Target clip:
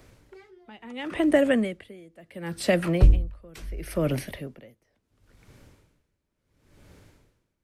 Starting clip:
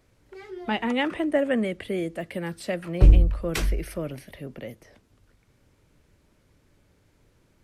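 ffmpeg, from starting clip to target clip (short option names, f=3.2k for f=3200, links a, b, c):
-filter_complex "[0:a]acrossover=split=170|3000[a][b][c];[b]acompressor=threshold=-27dB:ratio=6[d];[a][d][c]amix=inputs=3:normalize=0,asplit=2[e][f];[f]asoftclip=type=tanh:threshold=-14dB,volume=-5dB[g];[e][g]amix=inputs=2:normalize=0,aeval=exprs='val(0)*pow(10,-28*(0.5-0.5*cos(2*PI*0.72*n/s))/20)':c=same,volume=6.5dB"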